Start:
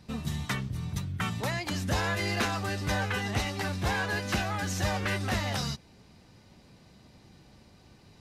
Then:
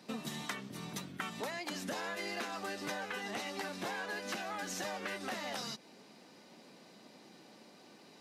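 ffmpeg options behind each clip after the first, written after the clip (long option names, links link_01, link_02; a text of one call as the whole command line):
ffmpeg -i in.wav -af "highpass=frequency=220:width=0.5412,highpass=frequency=220:width=1.3066,equalizer=frequency=580:width_type=o:width=0.77:gain=2,acompressor=threshold=-38dB:ratio=10,volume=1.5dB" out.wav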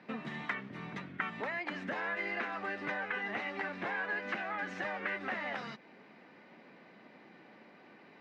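ffmpeg -i in.wav -af "lowpass=frequency=2000:width_type=q:width=2.2" out.wav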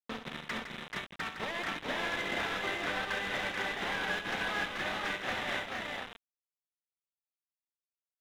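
ffmpeg -i in.wav -af "aresample=8000,acrusher=bits=5:mix=0:aa=0.000001,aresample=44100,volume=31.5dB,asoftclip=hard,volume=-31.5dB,aecho=1:1:67|160|435|467:0.376|0.376|0.631|0.668" out.wav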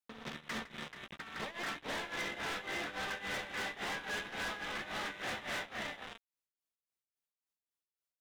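ffmpeg -i in.wav -filter_complex "[0:a]tremolo=f=3.6:d=0.85,asoftclip=type=hard:threshold=-37.5dB,asplit=2[link_01][link_02];[link_02]adelay=14,volume=-10dB[link_03];[link_01][link_03]amix=inputs=2:normalize=0,volume=1.5dB" out.wav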